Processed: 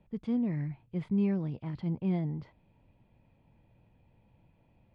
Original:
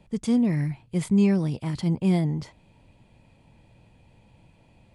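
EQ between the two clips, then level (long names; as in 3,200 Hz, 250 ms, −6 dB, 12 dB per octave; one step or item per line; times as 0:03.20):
high-frequency loss of the air 350 metres
−8.0 dB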